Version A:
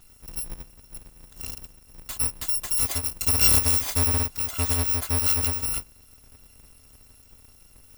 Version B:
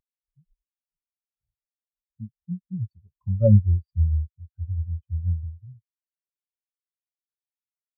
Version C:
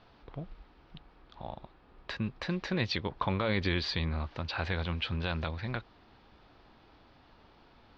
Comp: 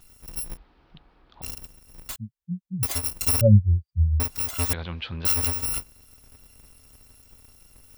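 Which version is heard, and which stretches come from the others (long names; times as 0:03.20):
A
0:00.57–0:01.42: punch in from C
0:02.16–0:02.83: punch in from B
0:03.41–0:04.20: punch in from B
0:04.73–0:05.25: punch in from C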